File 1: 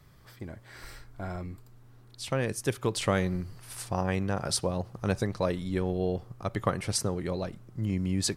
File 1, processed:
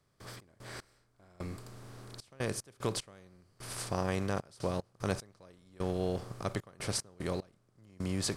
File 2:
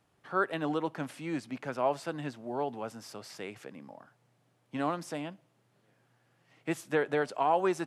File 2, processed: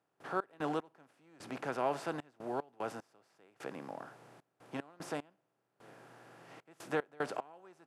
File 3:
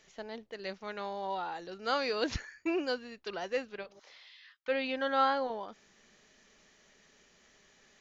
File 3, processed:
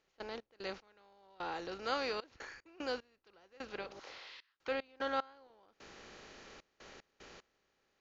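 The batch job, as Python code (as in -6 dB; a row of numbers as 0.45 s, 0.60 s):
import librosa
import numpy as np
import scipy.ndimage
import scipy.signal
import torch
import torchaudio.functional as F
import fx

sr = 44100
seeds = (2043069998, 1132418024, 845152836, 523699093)

y = fx.bin_compress(x, sr, power=0.6)
y = fx.step_gate(y, sr, bpm=75, pattern='.x.x...xxxx', floor_db=-24.0, edge_ms=4.5)
y = y * librosa.db_to_amplitude(-7.0)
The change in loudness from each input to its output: -6.0 LU, -6.5 LU, -7.0 LU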